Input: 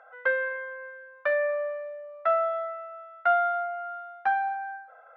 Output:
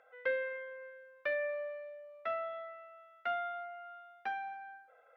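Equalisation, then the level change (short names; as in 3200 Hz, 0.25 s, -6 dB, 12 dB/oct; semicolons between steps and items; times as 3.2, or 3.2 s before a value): band shelf 1000 Hz -12 dB; -1.5 dB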